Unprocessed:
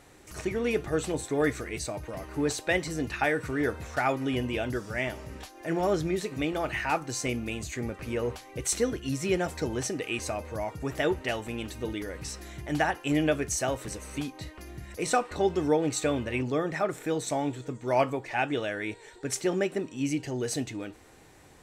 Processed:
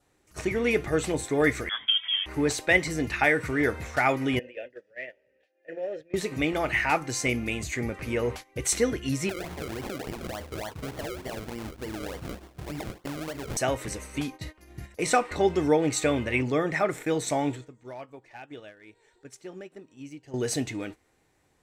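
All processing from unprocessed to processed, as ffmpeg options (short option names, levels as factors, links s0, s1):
-filter_complex "[0:a]asettb=1/sr,asplit=3[s0][s1][s2];[s0]atrim=end=1.694[s3];[s1]atrim=start=1.69:end=2.26,asetpts=PTS-STARTPTS,afade=t=in:d=0.004:c=qsin,afade=t=out:st=0.566:d=0.004:c=qsin,highpass=f=540:t=q:w=3.8,lowpass=f=3200:t=q:w=0.5098,lowpass=f=3200:t=q:w=0.6013,lowpass=f=3200:t=q:w=0.9,lowpass=f=3200:t=q:w=2.563,afreqshift=-3800[s4];[s2]atrim=start=2.256[s5];[s3][s4]acrossfade=d=0.004:c1=hsin:c2=qsin[s6];[s6][s5]acrossfade=d=0.004:c1=qsin:c2=hsin,asettb=1/sr,asplit=3[s7][s8][s9];[s7]atrim=end=4.394[s10];[s8]atrim=start=4.39:end=6.14,asetpts=PTS-STARTPTS,afade=t=in:d=0.004:c=qsin,afade=t=out:st=1.746:d=0.004:c=qsin,aeval=exprs='clip(val(0),-1,0.075)':c=same,asplit=3[s11][s12][s13];[s11]bandpass=f=530:t=q:w=8,volume=1[s14];[s12]bandpass=f=1840:t=q:w=8,volume=0.501[s15];[s13]bandpass=f=2480:t=q:w=8,volume=0.355[s16];[s14][s15][s16]amix=inputs=3:normalize=0[s17];[s9]atrim=start=6.136[s18];[s10][s17]acrossfade=d=0.004:c1=hsin:c2=qsin[s19];[s19][s18]acrossfade=d=0.004:c1=qsin:c2=hsin,asettb=1/sr,asplit=3[s20][s21][s22];[s20]atrim=end=9.294[s23];[s21]atrim=start=9.29:end=13.57,asetpts=PTS-STARTPTS,afade=t=in:d=0.004:c=qsin,afade=t=out:st=4.276:d=0.004:c=qsin,bandreject=f=60:t=h:w=6,bandreject=f=120:t=h:w=6,bandreject=f=180:t=h:w=6,bandreject=f=240:t=h:w=6,bandreject=f=300:t=h:w=6,bandreject=f=360:t=h:w=6,bandreject=f=420:t=h:w=6,acompressor=threshold=0.0224:ratio=16:attack=3.2:release=140:knee=1:detection=peak,acrusher=samples=34:mix=1:aa=0.000001:lfo=1:lforange=34:lforate=3.4[s24];[s22]atrim=start=13.566[s25];[s23][s24]acrossfade=d=0.004:c1=hsin:c2=qsin[s26];[s26][s25]acrossfade=d=0.004:c1=qsin:c2=hsin,asettb=1/sr,asplit=3[s27][s28][s29];[s27]atrim=end=17.554[s30];[s28]atrim=start=17.55:end=20.34,asetpts=PTS-STARTPTS,afade=t=in:d=0.004:c=qsin,afade=t=out:st=2.786:d=0.004:c=qsin,highshelf=f=11000:g=-6,acompressor=threshold=0.01:ratio=5:attack=3.2:release=140:knee=1:detection=peak,asoftclip=type=hard:threshold=0.0188[s31];[s29]atrim=start=20.336[s32];[s30][s31]acrossfade=d=0.004:c1=hsin:c2=qsin[s33];[s33][s32]acrossfade=d=0.004:c1=qsin:c2=hsin,agate=range=0.158:threshold=0.00891:ratio=16:detection=peak,adynamicequalizer=threshold=0.00316:dfrequency=2100:dqfactor=4.1:tfrequency=2100:tqfactor=4.1:attack=5:release=100:ratio=0.375:range=4:mode=boostabove:tftype=bell,volume=1.33"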